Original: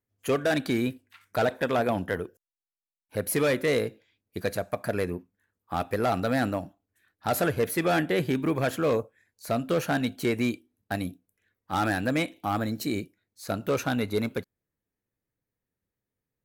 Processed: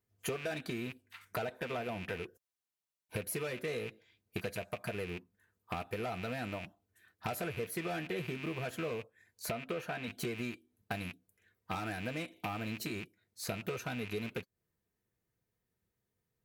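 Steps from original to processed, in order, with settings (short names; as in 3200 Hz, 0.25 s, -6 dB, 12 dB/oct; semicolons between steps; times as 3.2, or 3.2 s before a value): rattling part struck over -39 dBFS, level -22 dBFS; 9.5–10.08 tone controls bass -6 dB, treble -8 dB; compressor 10:1, threshold -37 dBFS, peak gain reduction 16.5 dB; notch comb 280 Hz; gain +3 dB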